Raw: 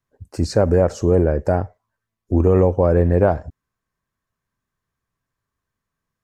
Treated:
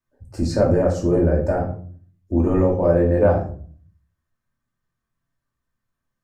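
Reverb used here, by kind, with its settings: simulated room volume 410 m³, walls furnished, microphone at 2.6 m; trim -6 dB

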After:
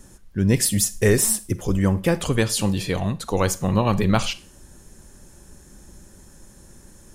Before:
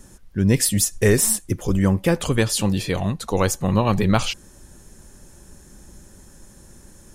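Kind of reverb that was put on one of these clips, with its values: Schroeder reverb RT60 0.38 s, combs from 33 ms, DRR 16.5 dB; trim -1 dB

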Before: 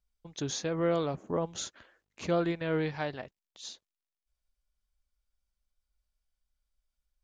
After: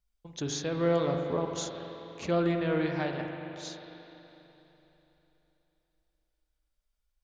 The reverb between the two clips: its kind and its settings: spring tank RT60 3.5 s, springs 41/48 ms, chirp 45 ms, DRR 3 dB

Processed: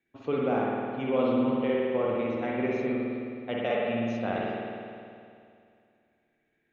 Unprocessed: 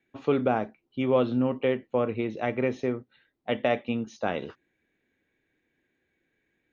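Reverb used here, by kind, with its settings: spring tank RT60 2.4 s, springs 52 ms, chirp 70 ms, DRR -4.5 dB; trim -6.5 dB

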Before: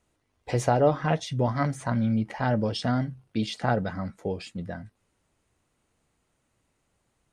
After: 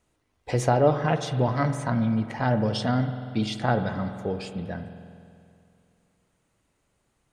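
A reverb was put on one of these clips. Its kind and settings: spring tank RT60 2.4 s, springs 47 ms, chirp 25 ms, DRR 9 dB; trim +1 dB

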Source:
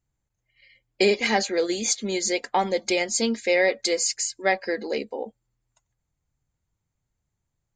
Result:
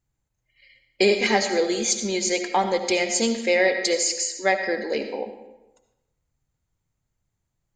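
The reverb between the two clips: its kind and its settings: algorithmic reverb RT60 0.98 s, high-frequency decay 0.75×, pre-delay 35 ms, DRR 7 dB; trim +1 dB

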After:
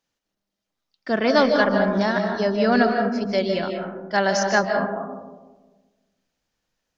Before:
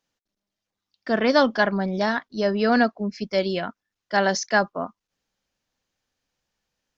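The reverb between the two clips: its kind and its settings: algorithmic reverb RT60 1.3 s, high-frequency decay 0.25×, pre-delay 110 ms, DRR 3.5 dB

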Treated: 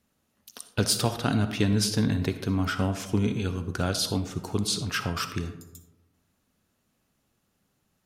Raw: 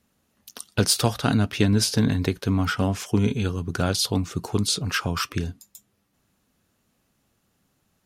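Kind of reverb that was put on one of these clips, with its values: algorithmic reverb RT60 0.98 s, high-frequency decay 0.4×, pre-delay 20 ms, DRR 9.5 dB; trim -4 dB

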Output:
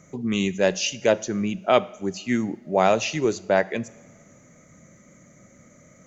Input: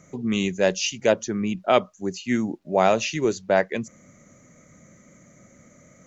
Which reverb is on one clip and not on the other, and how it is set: two-slope reverb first 0.76 s, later 3 s, from -18 dB, DRR 16.5 dB

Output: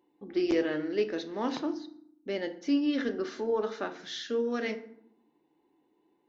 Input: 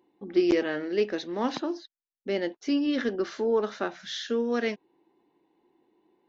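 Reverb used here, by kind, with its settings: FDN reverb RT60 0.68 s, low-frequency decay 1.45×, high-frequency decay 0.6×, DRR 8 dB; trim -4 dB

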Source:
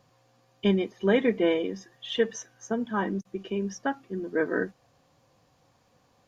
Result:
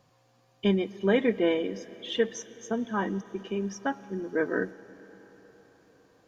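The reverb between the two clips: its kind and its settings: algorithmic reverb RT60 4.8 s, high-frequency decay 1×, pre-delay 80 ms, DRR 17.5 dB; trim -1 dB

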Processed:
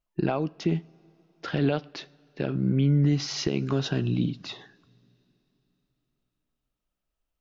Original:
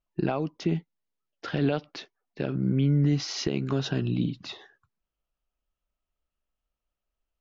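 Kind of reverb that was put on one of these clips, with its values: two-slope reverb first 0.49 s, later 3.8 s, from -16 dB, DRR 19 dB; trim +1 dB

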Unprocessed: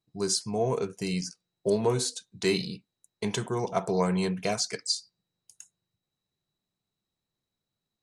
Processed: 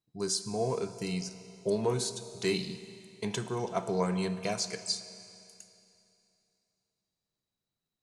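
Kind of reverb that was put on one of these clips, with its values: Schroeder reverb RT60 2.8 s, combs from 25 ms, DRR 11.5 dB; trim -4 dB

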